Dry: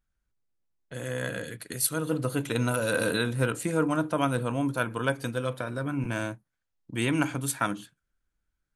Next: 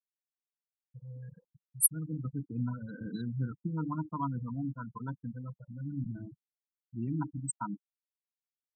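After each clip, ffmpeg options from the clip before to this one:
ffmpeg -i in.wav -af "afftfilt=real='re*gte(hypot(re,im),0.126)':imag='im*gte(hypot(re,im),0.126)':win_size=1024:overlap=0.75,firequalizer=gain_entry='entry(110,0);entry(180,6);entry(570,-25);entry(910,8);entry(1800,-25);entry(7100,12)':delay=0.05:min_phase=1,volume=-6dB" out.wav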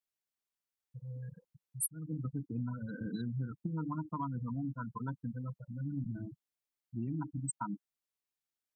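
ffmpeg -i in.wav -af "acompressor=threshold=-35dB:ratio=6,volume=1.5dB" out.wav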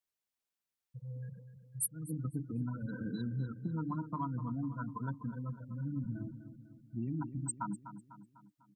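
ffmpeg -i in.wav -filter_complex "[0:a]asplit=2[link_01][link_02];[link_02]adelay=249,lowpass=frequency=3700:poles=1,volume=-11dB,asplit=2[link_03][link_04];[link_04]adelay=249,lowpass=frequency=3700:poles=1,volume=0.51,asplit=2[link_05][link_06];[link_06]adelay=249,lowpass=frequency=3700:poles=1,volume=0.51,asplit=2[link_07][link_08];[link_08]adelay=249,lowpass=frequency=3700:poles=1,volume=0.51,asplit=2[link_09][link_10];[link_10]adelay=249,lowpass=frequency=3700:poles=1,volume=0.51[link_11];[link_01][link_03][link_05][link_07][link_09][link_11]amix=inputs=6:normalize=0" out.wav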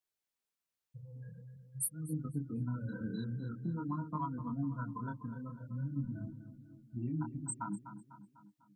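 ffmpeg -i in.wav -af "flanger=delay=19.5:depth=7.5:speed=0.47,volume=2.5dB" out.wav

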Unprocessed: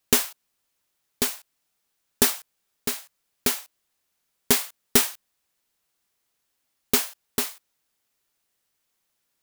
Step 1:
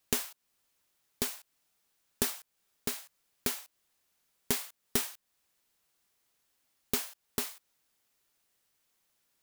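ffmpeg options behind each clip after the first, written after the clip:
ffmpeg -i in.wav -af "acompressor=threshold=-36dB:ratio=2" out.wav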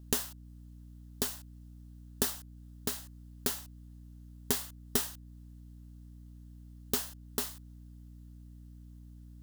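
ffmpeg -i in.wav -af "aeval=exprs='val(0)+0.00355*(sin(2*PI*60*n/s)+sin(2*PI*2*60*n/s)/2+sin(2*PI*3*60*n/s)/3+sin(2*PI*4*60*n/s)/4+sin(2*PI*5*60*n/s)/5)':channel_layout=same,equalizer=frequency=2300:width=5.1:gain=-10.5" out.wav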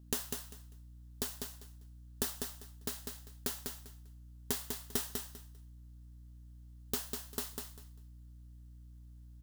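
ffmpeg -i in.wav -af "aecho=1:1:198|396|594:0.562|0.112|0.0225,volume=-5dB" out.wav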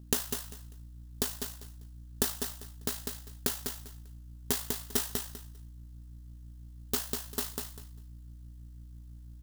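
ffmpeg -i in.wav -af "tremolo=f=54:d=0.462,volume=7.5dB" out.wav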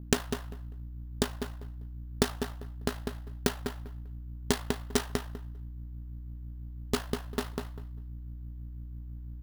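ffmpeg -i in.wav -af "adynamicsmooth=sensitivity=5:basefreq=1700,acrusher=samples=3:mix=1:aa=0.000001,volume=6.5dB" out.wav

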